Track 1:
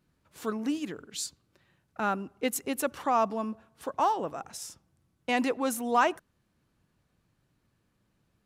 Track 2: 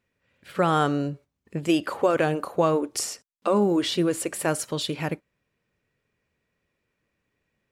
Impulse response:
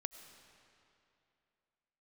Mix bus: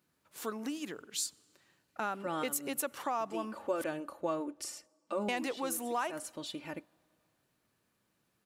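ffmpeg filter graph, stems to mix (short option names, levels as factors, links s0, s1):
-filter_complex "[0:a]highshelf=f=8600:g=8,acompressor=threshold=0.0316:ratio=4,highpass=f=340:p=1,volume=0.794,asplit=3[s0][s1][s2];[s0]atrim=end=3.84,asetpts=PTS-STARTPTS,afade=t=out:st=3.836:d=0.004:c=hsin[s3];[s1]atrim=start=3.84:end=5.28,asetpts=PTS-STARTPTS,volume=0[s4];[s2]atrim=start=5.28,asetpts=PTS-STARTPTS,afade=t=in:d=0.004:c=hsin[s5];[s3][s4][s5]concat=n=3:v=0:a=1,asplit=3[s6][s7][s8];[s7]volume=0.188[s9];[1:a]aecho=1:1:3.4:0.59,adelay=1650,volume=0.178,asplit=2[s10][s11];[s11]volume=0.112[s12];[s8]apad=whole_len=413026[s13];[s10][s13]sidechaincompress=threshold=0.00316:ratio=8:attack=45:release=111[s14];[2:a]atrim=start_sample=2205[s15];[s9][s12]amix=inputs=2:normalize=0[s16];[s16][s15]afir=irnorm=-1:irlink=0[s17];[s6][s14][s17]amix=inputs=3:normalize=0"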